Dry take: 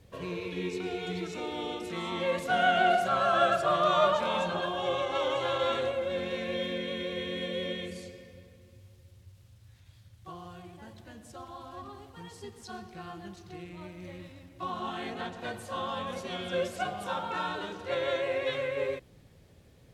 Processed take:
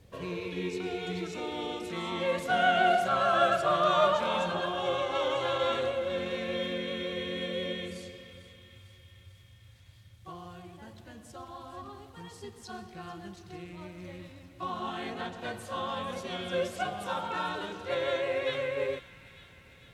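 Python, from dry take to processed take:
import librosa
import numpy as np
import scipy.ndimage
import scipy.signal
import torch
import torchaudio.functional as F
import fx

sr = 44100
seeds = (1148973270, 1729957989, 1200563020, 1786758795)

y = fx.echo_wet_highpass(x, sr, ms=449, feedback_pct=65, hz=1500.0, wet_db=-15.0)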